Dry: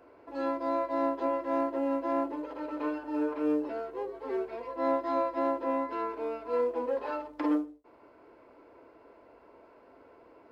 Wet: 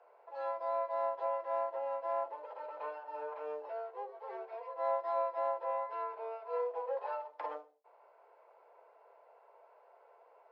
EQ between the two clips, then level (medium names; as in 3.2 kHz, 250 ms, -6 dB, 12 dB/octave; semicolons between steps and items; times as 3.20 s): steep high-pass 450 Hz 48 dB/octave; distance through air 130 m; peaking EQ 800 Hz +8.5 dB 0.68 oct; -7.5 dB